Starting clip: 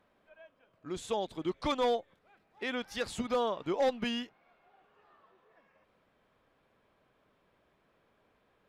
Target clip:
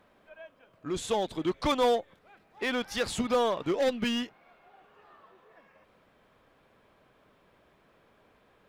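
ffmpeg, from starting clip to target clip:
ffmpeg -i in.wav -filter_complex "[0:a]asettb=1/sr,asplit=3[link_01][link_02][link_03];[link_01]atrim=end=3.714[link_04];[link_02]atrim=start=3.71:end=4.16,asetpts=PTS-STARTPTS,afade=type=in:duration=0.004:curve=qsin,afade=type=out:start_time=0.446:duration=0.004:curve=qsin,equalizer=frequency=860:width=2:gain=-9.5[link_05];[link_03]atrim=start=4.156[link_06];[link_04][link_05]acrossfade=duration=0.004:curve1=hsin:curve2=qsin[link_07];[link_07][link_06]acrossfade=duration=0.004:curve1=qsin:curve2=hsin,asplit=2[link_08][link_09];[link_09]aeval=exprs='0.0158*(abs(mod(val(0)/0.0158+3,4)-2)-1)':channel_layout=same,volume=-8dB[link_10];[link_08][link_10]amix=inputs=2:normalize=0,volume=4.5dB" out.wav

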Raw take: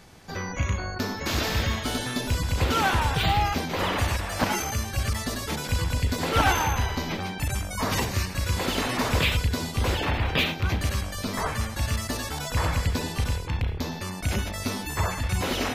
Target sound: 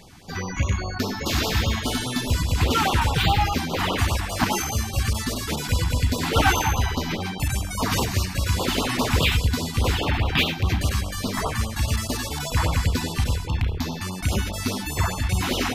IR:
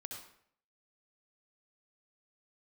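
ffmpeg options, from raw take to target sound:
-af "afftfilt=real='re*(1-between(b*sr/1024,450*pow(2000/450,0.5+0.5*sin(2*PI*4.9*pts/sr))/1.41,450*pow(2000/450,0.5+0.5*sin(2*PI*4.9*pts/sr))*1.41))':imag='im*(1-between(b*sr/1024,450*pow(2000/450,0.5+0.5*sin(2*PI*4.9*pts/sr))/1.41,450*pow(2000/450,0.5+0.5*sin(2*PI*4.9*pts/sr))*1.41))':win_size=1024:overlap=0.75,volume=3.5dB"

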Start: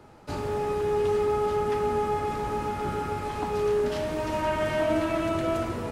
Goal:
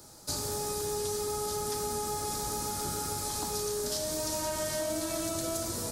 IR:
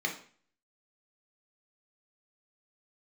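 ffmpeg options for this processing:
-filter_complex "[0:a]asplit=2[link_01][link_02];[1:a]atrim=start_sample=2205,lowpass=2400[link_03];[link_02][link_03]afir=irnorm=-1:irlink=0,volume=-18dB[link_04];[link_01][link_04]amix=inputs=2:normalize=0,aexciter=amount=7.9:drive=8.5:freq=4100,acompressor=threshold=-25dB:ratio=6,volume=-4.5dB"

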